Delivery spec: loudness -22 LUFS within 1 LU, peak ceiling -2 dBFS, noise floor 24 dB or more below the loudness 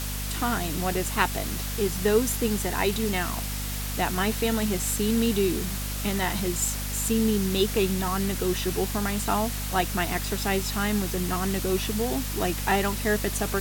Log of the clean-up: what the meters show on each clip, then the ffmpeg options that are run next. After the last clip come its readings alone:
hum 50 Hz; harmonics up to 250 Hz; hum level -30 dBFS; noise floor -31 dBFS; noise floor target -50 dBFS; loudness -26.0 LUFS; peak -6.5 dBFS; loudness target -22.0 LUFS
-> -af "bandreject=f=50:t=h:w=4,bandreject=f=100:t=h:w=4,bandreject=f=150:t=h:w=4,bandreject=f=200:t=h:w=4,bandreject=f=250:t=h:w=4"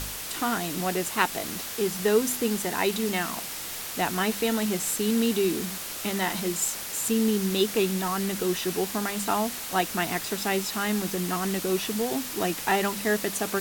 hum none; noise floor -36 dBFS; noise floor target -51 dBFS
-> -af "afftdn=nr=15:nf=-36"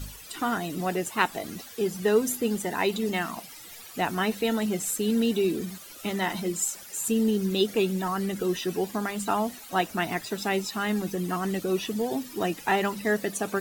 noise floor -45 dBFS; noise floor target -52 dBFS
-> -af "afftdn=nr=7:nf=-45"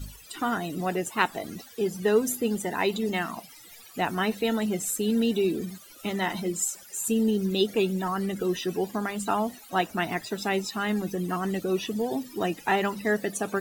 noise floor -49 dBFS; noise floor target -52 dBFS
-> -af "afftdn=nr=6:nf=-49"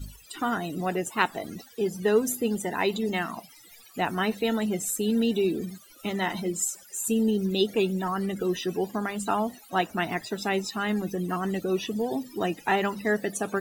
noise floor -52 dBFS; loudness -28.0 LUFS; peak -6.0 dBFS; loudness target -22.0 LUFS
-> -af "volume=6dB,alimiter=limit=-2dB:level=0:latency=1"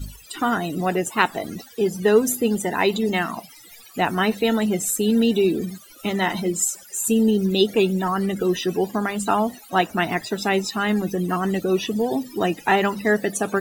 loudness -22.0 LUFS; peak -2.0 dBFS; noise floor -46 dBFS

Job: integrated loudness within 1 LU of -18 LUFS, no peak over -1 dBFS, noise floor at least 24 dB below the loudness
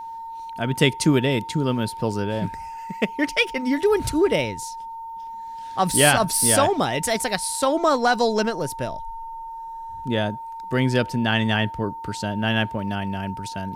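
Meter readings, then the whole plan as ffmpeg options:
steady tone 910 Hz; tone level -32 dBFS; loudness -22.0 LUFS; peak -3.0 dBFS; loudness target -18.0 LUFS
-> -af "bandreject=f=910:w=30"
-af "volume=4dB,alimiter=limit=-1dB:level=0:latency=1"

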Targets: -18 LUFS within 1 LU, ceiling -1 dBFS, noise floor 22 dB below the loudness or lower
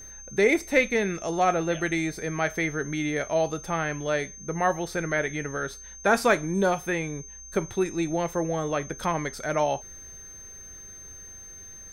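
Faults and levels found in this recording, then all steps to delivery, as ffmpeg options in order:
steady tone 6300 Hz; tone level -42 dBFS; loudness -26.5 LUFS; peak -8.0 dBFS; loudness target -18.0 LUFS
-> -af "bandreject=f=6.3k:w=30"
-af "volume=8.5dB,alimiter=limit=-1dB:level=0:latency=1"

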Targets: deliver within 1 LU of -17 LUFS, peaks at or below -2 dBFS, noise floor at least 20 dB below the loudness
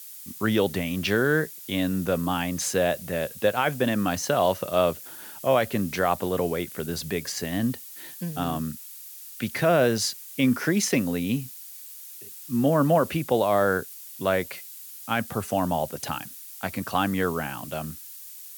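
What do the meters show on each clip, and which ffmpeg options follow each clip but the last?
noise floor -43 dBFS; noise floor target -46 dBFS; loudness -25.5 LUFS; peak -10.0 dBFS; loudness target -17.0 LUFS
-> -af "afftdn=nr=6:nf=-43"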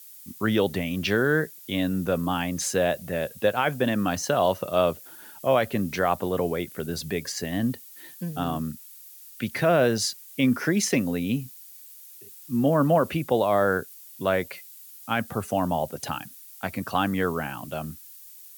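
noise floor -47 dBFS; loudness -26.0 LUFS; peak -10.0 dBFS; loudness target -17.0 LUFS
-> -af "volume=9dB,alimiter=limit=-2dB:level=0:latency=1"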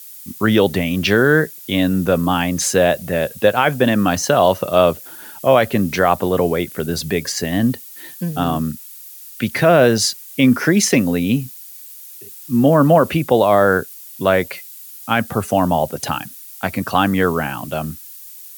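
loudness -17.0 LUFS; peak -2.0 dBFS; noise floor -38 dBFS

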